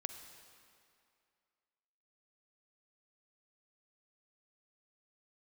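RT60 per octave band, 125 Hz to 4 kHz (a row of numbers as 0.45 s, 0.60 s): 2.0 s, 2.3 s, 2.4 s, 2.4 s, 2.3 s, 2.0 s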